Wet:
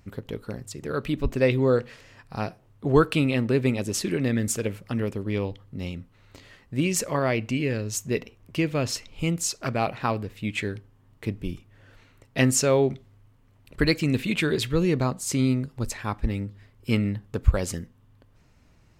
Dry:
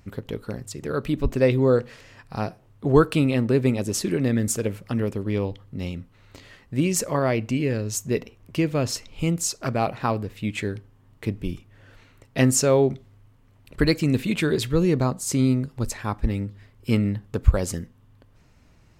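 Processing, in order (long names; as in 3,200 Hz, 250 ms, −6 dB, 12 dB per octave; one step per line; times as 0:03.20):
dynamic equaliser 2,600 Hz, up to +5 dB, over −41 dBFS, Q 0.85
level −2.5 dB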